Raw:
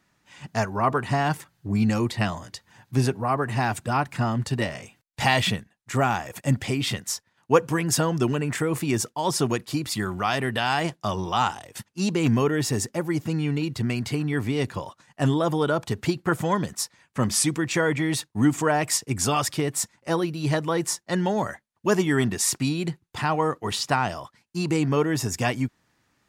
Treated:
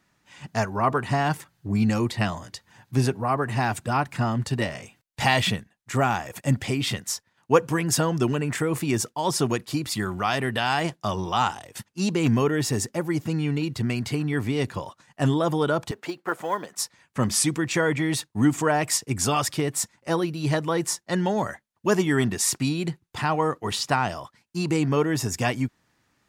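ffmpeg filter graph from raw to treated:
-filter_complex "[0:a]asettb=1/sr,asplit=3[a][b][c];[a]atrim=end=15.914[d];[b]atrim=start=15.91:end=16.76,asetpts=PTS-STARTPTS,afade=t=in:d=0.004:c=qsin,afade=t=out:st=0.846:d=0.004:c=qsin,highpass=460,highshelf=f=2.8k:g=-9.5,acrusher=bits=8:mode=log:mix=0:aa=0.000001[e];[c]atrim=start=16.756[f];[d][e]acrossfade=d=0.004:c1=hsin:c2=qsin[g];[g][f]acrossfade=d=0.004:c1=qsin:c2=hsin"

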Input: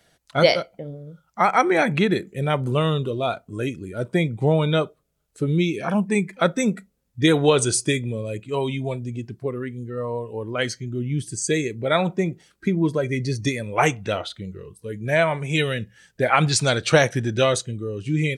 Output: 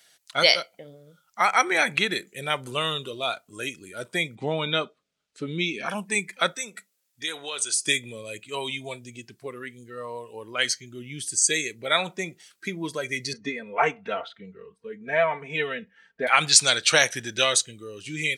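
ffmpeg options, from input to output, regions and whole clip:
-filter_complex "[0:a]asettb=1/sr,asplit=3[a][b][c];[a]atrim=end=4.354[d];[b]atrim=start=4.35:end=5.86,asetpts=PTS-STARTPTS,afade=t=in:d=0.004:c=qsin,afade=t=out:st=1.506:d=0.004:c=qsin,lowpass=4.3k,equalizer=f=230:t=o:w=0.5:g=11.5[e];[c]atrim=start=5.856[f];[d][e]acrossfade=d=0.004:c1=hsin:c2=qsin[g];[g][f]acrossfade=d=0.004:c1=qsin:c2=hsin,asettb=1/sr,asplit=3[h][i][j];[h]atrim=end=6.544[k];[i]atrim=start=6.54:end=7.85,asetpts=PTS-STARTPTS,afade=t=in:d=0.004:c=qsin,afade=t=out:st=1.306:d=0.004:c=qsin,highpass=f=500:p=1,acompressor=threshold=-34dB:ratio=2:attack=3.2:release=140:knee=1:detection=peak[l];[j]atrim=start=7.846[m];[k][l]acrossfade=d=0.004:c1=hsin:c2=qsin[n];[n][m]acrossfade=d=0.004:c1=qsin:c2=hsin,asettb=1/sr,asplit=3[o][p][q];[o]atrim=end=13.334[r];[p]atrim=start=13.33:end=16.27,asetpts=PTS-STARTPTS,afade=t=in:d=0.004:c=qsin,afade=t=out:st=2.936:d=0.004:c=qsin,lowpass=1.4k,aecho=1:1:4.4:0.92,atrim=end_sample=129654[s];[q]atrim=start=16.266[t];[r][s]acrossfade=d=0.004:c1=hsin:c2=qsin[u];[u][t]acrossfade=d=0.004:c1=qsin:c2=hsin,highpass=f=270:p=1,tiltshelf=f=1.3k:g=-8.5,volume=-1dB"

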